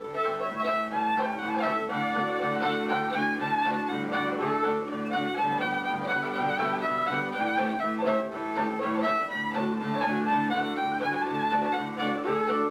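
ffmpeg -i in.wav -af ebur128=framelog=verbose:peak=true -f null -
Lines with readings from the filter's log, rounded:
Integrated loudness:
  I:         -27.8 LUFS
  Threshold: -37.8 LUFS
Loudness range:
  LRA:         0.5 LU
  Threshold: -47.8 LUFS
  LRA low:   -28.0 LUFS
  LRA high:  -27.5 LUFS
True peak:
  Peak:      -14.1 dBFS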